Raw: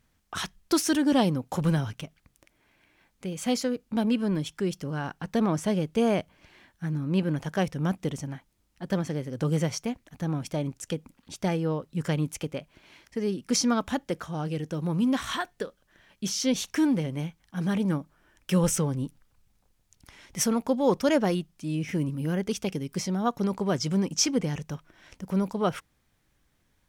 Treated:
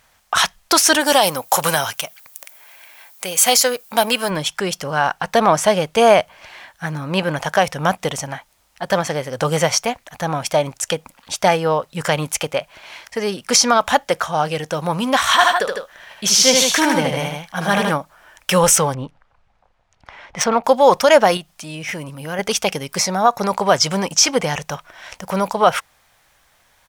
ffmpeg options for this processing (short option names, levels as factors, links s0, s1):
-filter_complex "[0:a]asplit=3[s0][s1][s2];[s0]afade=t=out:st=1:d=0.02[s3];[s1]aemphasis=mode=production:type=bsi,afade=t=in:st=1:d=0.02,afade=t=out:st=4.29:d=0.02[s4];[s2]afade=t=in:st=4.29:d=0.02[s5];[s3][s4][s5]amix=inputs=3:normalize=0,asplit=3[s6][s7][s8];[s6]afade=t=out:st=15.38:d=0.02[s9];[s7]aecho=1:1:75|155:0.668|0.473,afade=t=in:st=15.38:d=0.02,afade=t=out:st=17.9:d=0.02[s10];[s8]afade=t=in:st=17.9:d=0.02[s11];[s9][s10][s11]amix=inputs=3:normalize=0,asettb=1/sr,asplit=3[s12][s13][s14];[s12]atrim=end=18.944[s15];[s13]atrim=start=18.94:end=20.64,asetpts=PTS-STARTPTS,afade=t=in:d=0.004:c=qsin,afade=t=out:st=1.696:d=0.004:c=qsin,adynamicsmooth=sensitivity=1.5:basefreq=2200[s16];[s14]atrim=start=20.636[s17];[s15][s16]acrossfade=d=0.004:c1=hsin:c2=qsin[s18];[s18][s17]acrossfade=d=0.004:c1=qsin:c2=hsin,asettb=1/sr,asplit=3[s19][s20][s21];[s19]atrim=end=21.374[s22];[s20]atrim=start=21.37:end=22.39,asetpts=PTS-STARTPTS,afade=t=in:d=0.004:c=qsin,afade=t=out:st=1.016:d=0.004:c=qsin,acompressor=threshold=0.00794:ratio=1.5:attack=3.2:release=140:knee=1:detection=peak[s23];[s21]atrim=start=22.386[s24];[s22][s23]acrossfade=d=0.004:c1=hsin:c2=qsin[s25];[s25][s24]acrossfade=d=0.004:c1=qsin:c2=hsin,asettb=1/sr,asplit=3[s26][s27][s28];[s26]atrim=end=22.984[s29];[s27]atrim=start=22.98:end=23.51,asetpts=PTS-STARTPTS,afade=t=in:d=0.004:c=qsin,afade=t=out:st=0.526:d=0.004:c=qsin,bandreject=f=3100:w=5.2[s30];[s28]atrim=start=23.506[s31];[s29][s30]acrossfade=d=0.004:c1=hsin:c2=qsin[s32];[s32][s31]acrossfade=d=0.004:c1=qsin:c2=hsin,lowshelf=f=460:t=q:w=1.5:g=-12.5,alimiter=level_in=7.5:limit=0.891:release=50:level=0:latency=1,volume=0.891"